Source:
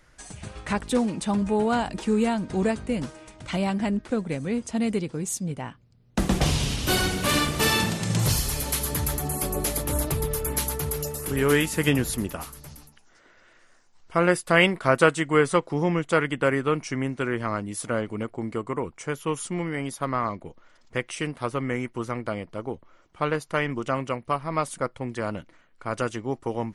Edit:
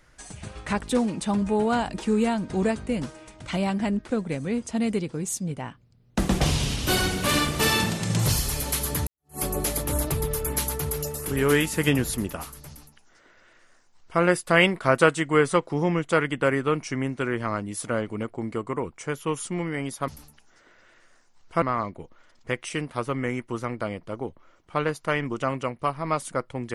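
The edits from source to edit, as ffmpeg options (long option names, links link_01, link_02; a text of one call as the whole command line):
ffmpeg -i in.wav -filter_complex "[0:a]asplit=4[link_01][link_02][link_03][link_04];[link_01]atrim=end=9.07,asetpts=PTS-STARTPTS,afade=type=out:start_time=9.066:duration=0.004:curve=hsin[link_05];[link_02]atrim=start=9.07:end=20.082,asetpts=PTS-STARTPTS,afade=type=in:duration=0.32:curve=exp[link_06];[link_03]atrim=start=12.668:end=14.212[link_07];[link_04]atrim=start=20.078[link_08];[link_05][link_06]concat=n=2:v=0:a=1[link_09];[link_09][link_07]acrossfade=duration=0.004:curve1=hsin:curve2=hsin[link_10];[link_10][link_08]acrossfade=duration=0.004:curve1=hsin:curve2=hsin" out.wav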